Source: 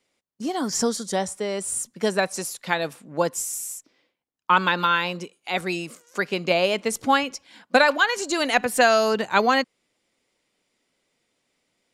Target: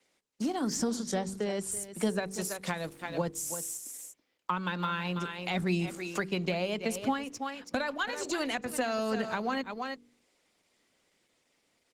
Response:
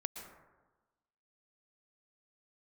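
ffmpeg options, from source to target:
-filter_complex "[0:a]asplit=2[a][b];[b]aeval=exprs='sgn(val(0))*max(abs(val(0))-0.015,0)':c=same,volume=-8dB[c];[a][c]amix=inputs=2:normalize=0,lowshelf=f=79:g=-9,dynaudnorm=f=150:g=17:m=10.5dB,asplit=2[d][e];[e]aecho=0:1:328:0.2[f];[d][f]amix=inputs=2:normalize=0,alimiter=limit=-6dB:level=0:latency=1:release=335,asettb=1/sr,asplit=3[g][h][i];[g]atrim=end=0.954[j];[h]atrim=start=0.95:end=1.72,asetpts=PTS-STARTPTS,afade=t=in:d=0.004:c=qsin,afade=t=out:st=0.766:d=0.004:c=qsin,lowpass=7.9k[k];[i]atrim=start=1.716[l];[j][k]acrossfade=d=0.004:c1=hsin:c2=qsin[m];[m][l]acrossfade=d=0.004:c1=qsin:c2=hsin,asettb=1/sr,asplit=3[n][o][p];[n]atrim=end=2.834[q];[o]atrim=start=2.83:end=3.34,asetpts=PTS-STARTPTS,afade=t=in:d=0.004:c=qsin,afade=t=out:st=0.506:d=0.004:c=qsin,aeval=exprs='sgn(val(0))*max(abs(val(0))-0.00251,0)':c=same[r];[p]atrim=start=3.336[s];[q][r]acrossfade=d=0.004:c1=hsin:c2=qsin[t];[t][s]acrossfade=d=0.004:c1=qsin:c2=hsin,asettb=1/sr,asplit=3[u][v][w];[u]atrim=end=5.384[x];[v]atrim=start=5.38:end=5.86,asetpts=PTS-STARTPTS,afade=t=in:d=0.004:c=qsin,afade=t=out:st=0.476:d=0.004:c=qsin,lowshelf=f=300:g=7[y];[w]atrim=start=5.856[z];[x][y]acrossfade=d=0.004:c1=hsin:c2=qsin[aa];[aa][z]acrossfade=d=0.004:c1=qsin:c2=hsin,bandreject=f=48.03:t=h:w=4,bandreject=f=96.06:t=h:w=4,bandreject=f=144.09:t=h:w=4,bandreject=f=192.12:t=h:w=4,bandreject=f=240.15:t=h:w=4,bandreject=f=288.18:t=h:w=4,bandreject=f=336.21:t=h:w=4,bandreject=f=384.24:t=h:w=4,bandreject=f=432.27:t=h:w=4,bandreject=f=480.3:t=h:w=4,acrossover=split=190[ab][ac];[ac]acompressor=threshold=-35dB:ratio=4[ad];[ab][ad]amix=inputs=2:normalize=0,volume=2dB" -ar 48000 -c:a libopus -b:a 16k

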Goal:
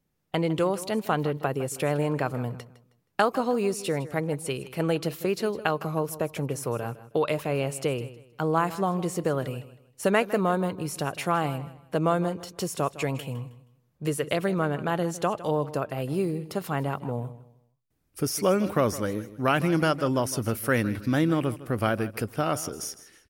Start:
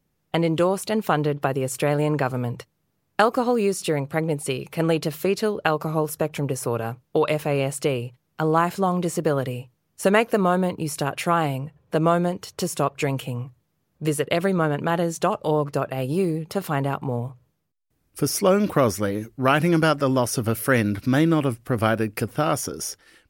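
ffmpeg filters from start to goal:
-af "aecho=1:1:158|316|474:0.158|0.046|0.0133,volume=-4.5dB"

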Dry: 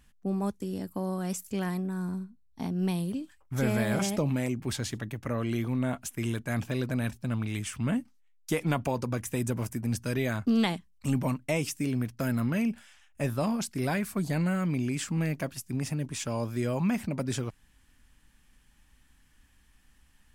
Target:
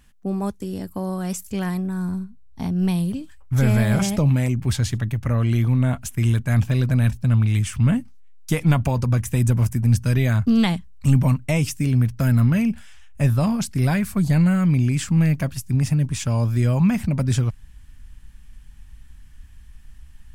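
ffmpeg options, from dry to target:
-af "asubboost=boost=5.5:cutoff=140,volume=5.5dB"

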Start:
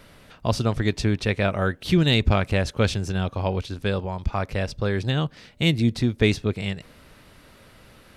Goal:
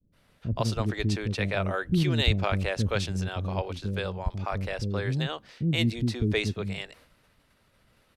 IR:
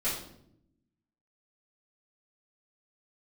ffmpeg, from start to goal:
-filter_complex "[0:a]agate=range=-33dB:threshold=-42dB:ratio=3:detection=peak,acrossover=split=350[a][b];[b]adelay=120[c];[a][c]amix=inputs=2:normalize=0,volume=-4dB"

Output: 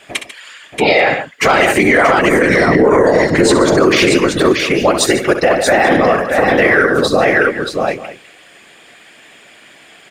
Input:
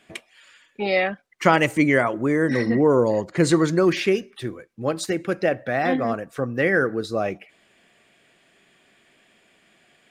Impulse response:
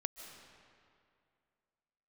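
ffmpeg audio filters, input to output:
-filter_complex "[0:a]highpass=f=430:p=1,acontrast=39,afftfilt=real='hypot(re,im)*cos(2*PI*random(0))':imag='hypot(re,im)*sin(2*PI*random(1))':win_size=512:overlap=0.75,asplit=2[a][b];[b]aecho=0:1:64|144|631|835:0.299|0.211|0.531|0.112[c];[a][c]amix=inputs=2:normalize=0,alimiter=level_in=17.5dB:limit=-1dB:release=50:level=0:latency=1,volume=-1dB"

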